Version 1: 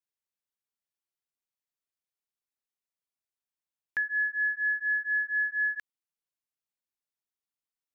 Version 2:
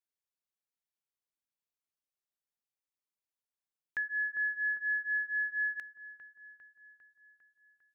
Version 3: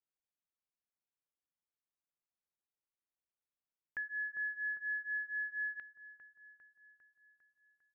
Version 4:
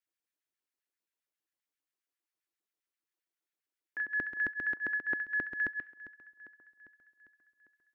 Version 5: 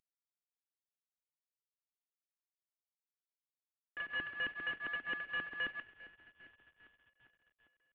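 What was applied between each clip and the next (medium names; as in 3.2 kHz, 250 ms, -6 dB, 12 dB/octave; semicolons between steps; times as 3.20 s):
feedback echo behind a low-pass 401 ms, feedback 59%, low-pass 1.3 kHz, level -7 dB; trim -5 dB
distance through air 460 m; trim -2 dB
two-slope reverb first 0.41 s, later 1.8 s, from -25 dB, DRR 7 dB; LFO high-pass square 7.5 Hz 310–1700 Hz
CVSD coder 16 kbps; trim -6.5 dB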